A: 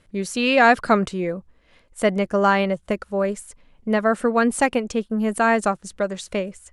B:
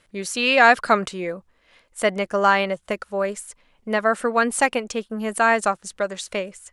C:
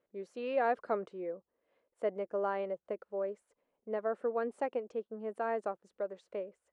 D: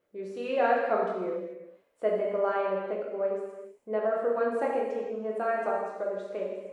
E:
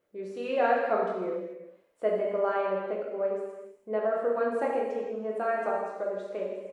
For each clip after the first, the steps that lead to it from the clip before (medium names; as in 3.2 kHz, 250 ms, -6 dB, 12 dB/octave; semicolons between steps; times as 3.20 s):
bass shelf 400 Hz -12 dB; trim +3 dB
band-pass filter 450 Hz, Q 1.7; trim -9 dB
gated-style reverb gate 460 ms falling, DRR -3.5 dB; trim +2.5 dB
delay 159 ms -21.5 dB